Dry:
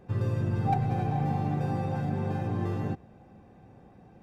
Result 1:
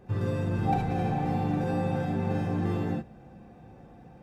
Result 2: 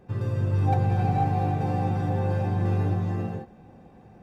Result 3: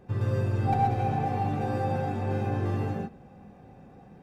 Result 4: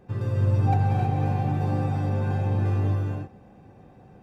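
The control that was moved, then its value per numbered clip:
gated-style reverb, gate: 90 ms, 520 ms, 150 ms, 340 ms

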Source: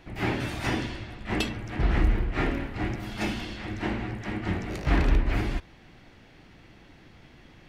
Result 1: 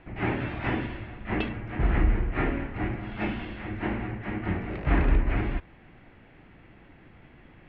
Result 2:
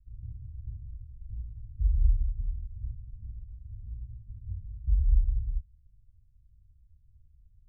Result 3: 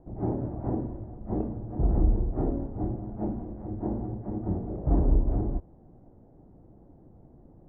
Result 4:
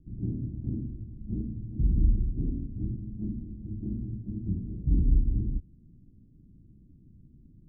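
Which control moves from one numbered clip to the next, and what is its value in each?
inverse Chebyshev low-pass, stop band from: 12 kHz, 500 Hz, 4.3 kHz, 1.5 kHz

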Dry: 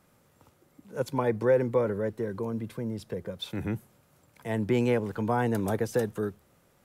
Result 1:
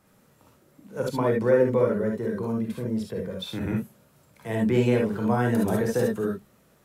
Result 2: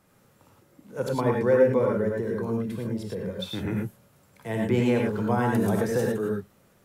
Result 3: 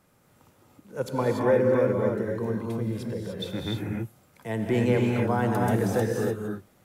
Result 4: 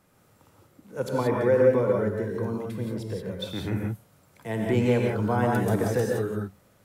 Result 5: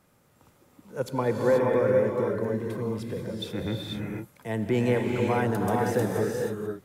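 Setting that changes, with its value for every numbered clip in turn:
gated-style reverb, gate: 90 ms, 130 ms, 320 ms, 200 ms, 510 ms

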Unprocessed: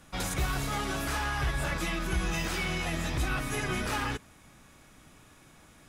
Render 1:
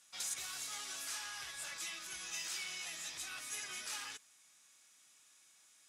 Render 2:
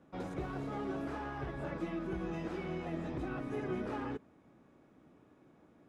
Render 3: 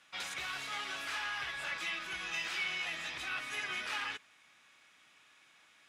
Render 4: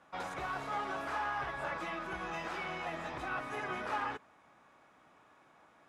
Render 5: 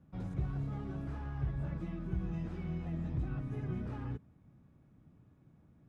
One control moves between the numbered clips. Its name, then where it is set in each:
band-pass filter, frequency: 7 kHz, 350 Hz, 2.7 kHz, 890 Hz, 130 Hz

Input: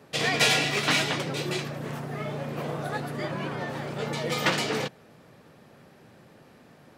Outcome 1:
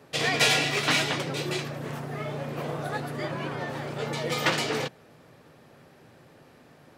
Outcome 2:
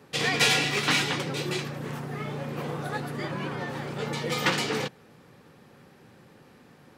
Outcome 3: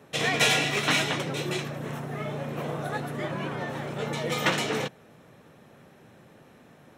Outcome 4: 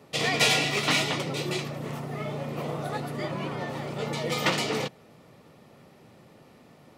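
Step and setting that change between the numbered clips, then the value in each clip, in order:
band-stop, frequency: 200 Hz, 640 Hz, 4.7 kHz, 1.6 kHz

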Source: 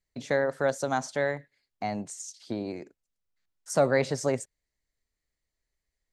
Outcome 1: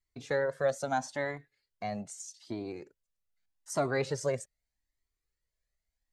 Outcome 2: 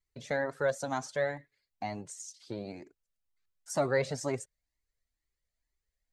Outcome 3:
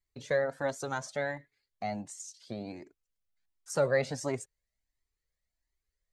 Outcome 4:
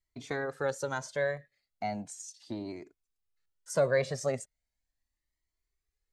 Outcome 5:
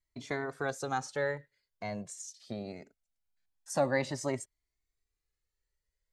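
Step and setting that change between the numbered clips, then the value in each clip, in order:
Shepard-style flanger, rate: 0.8 Hz, 2.1 Hz, 1.4 Hz, 0.37 Hz, 0.23 Hz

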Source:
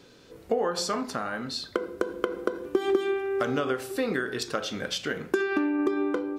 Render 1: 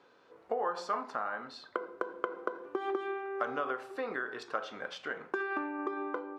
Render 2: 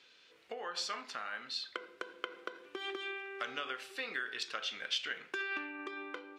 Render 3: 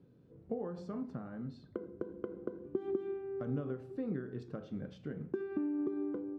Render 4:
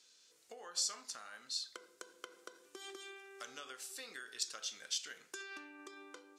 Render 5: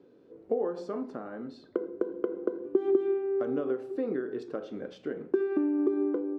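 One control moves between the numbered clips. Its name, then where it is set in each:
band-pass filter, frequency: 1 kHz, 2.7 kHz, 140 Hz, 7.1 kHz, 350 Hz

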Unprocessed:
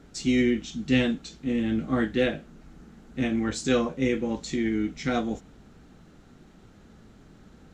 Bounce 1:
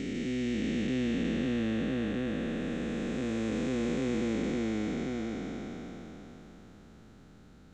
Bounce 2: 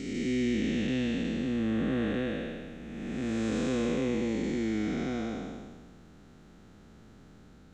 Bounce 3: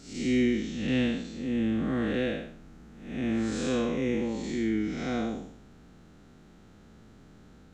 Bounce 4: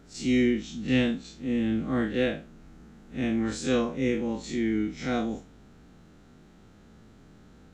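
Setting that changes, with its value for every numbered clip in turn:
spectral blur, width: 1480 ms, 591 ms, 234 ms, 84 ms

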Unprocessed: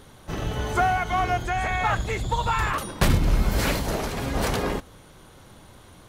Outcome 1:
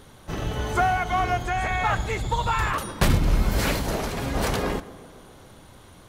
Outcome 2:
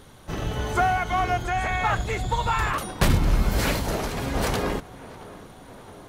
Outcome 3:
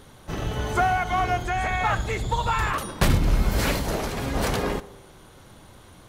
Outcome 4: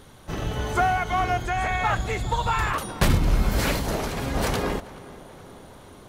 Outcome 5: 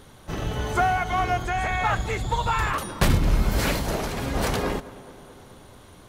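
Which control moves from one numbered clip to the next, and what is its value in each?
tape echo, time: 135 ms, 671 ms, 66 ms, 424 ms, 213 ms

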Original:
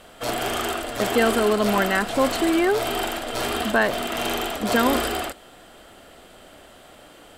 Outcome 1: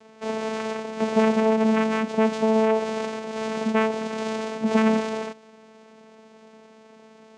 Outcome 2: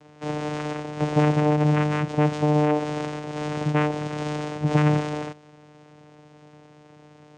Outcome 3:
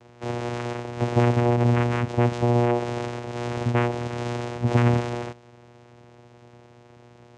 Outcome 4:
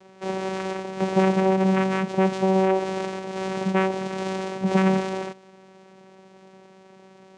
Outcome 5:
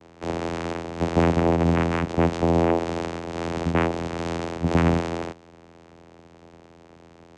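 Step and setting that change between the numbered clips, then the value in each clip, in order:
vocoder, frequency: 220 Hz, 150 Hz, 120 Hz, 190 Hz, 84 Hz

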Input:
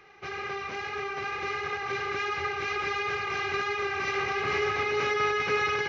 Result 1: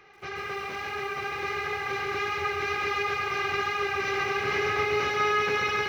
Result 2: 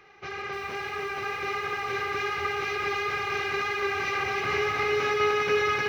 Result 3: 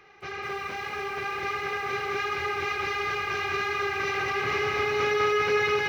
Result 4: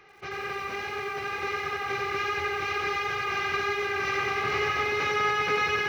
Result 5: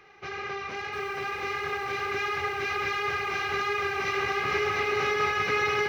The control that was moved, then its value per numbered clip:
bit-crushed delay, time: 136 ms, 304 ms, 206 ms, 90 ms, 705 ms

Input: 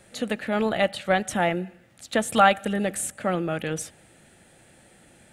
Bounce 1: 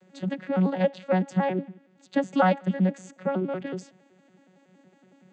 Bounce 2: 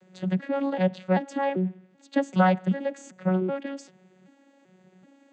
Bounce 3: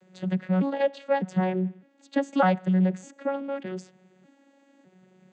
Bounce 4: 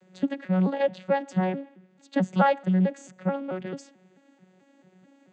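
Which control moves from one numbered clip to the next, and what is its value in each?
vocoder on a broken chord, a note every: 93 ms, 387 ms, 605 ms, 219 ms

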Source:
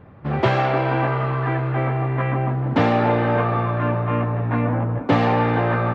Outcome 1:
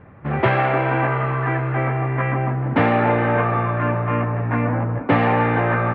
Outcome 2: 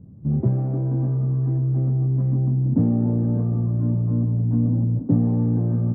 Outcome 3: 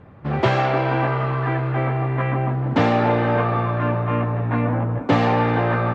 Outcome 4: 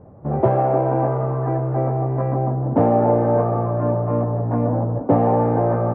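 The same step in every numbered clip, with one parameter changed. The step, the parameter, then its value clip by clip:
resonant low-pass, frequency: 2.2 kHz, 210 Hz, 7.9 kHz, 670 Hz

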